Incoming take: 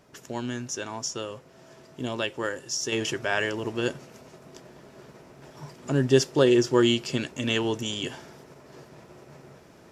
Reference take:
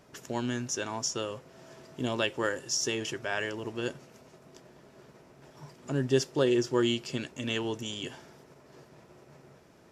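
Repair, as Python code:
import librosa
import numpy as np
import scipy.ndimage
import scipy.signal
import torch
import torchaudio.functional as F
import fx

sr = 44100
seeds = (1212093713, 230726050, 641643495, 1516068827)

y = fx.gain(x, sr, db=fx.steps((0.0, 0.0), (2.92, -6.0)))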